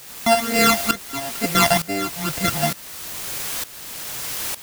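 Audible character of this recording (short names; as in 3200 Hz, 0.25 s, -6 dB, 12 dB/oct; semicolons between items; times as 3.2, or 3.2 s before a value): a buzz of ramps at a fixed pitch in blocks of 64 samples; phasing stages 12, 2.2 Hz, lowest notch 380–1200 Hz; a quantiser's noise floor 6-bit, dither triangular; tremolo saw up 1.1 Hz, depth 85%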